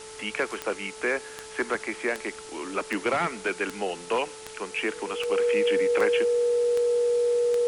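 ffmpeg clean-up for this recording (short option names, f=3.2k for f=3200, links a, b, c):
-af "adeclick=t=4,bandreject=f=436.6:t=h:w=4,bandreject=f=873.2:t=h:w=4,bandreject=f=1.3098k:t=h:w=4,bandreject=f=480:w=30,afwtdn=0.0071"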